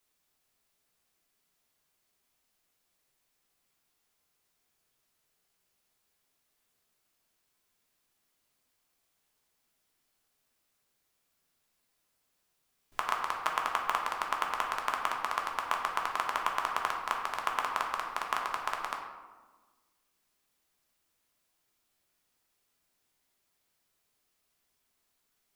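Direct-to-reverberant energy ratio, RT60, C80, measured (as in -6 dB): 0.0 dB, 1.4 s, 6.0 dB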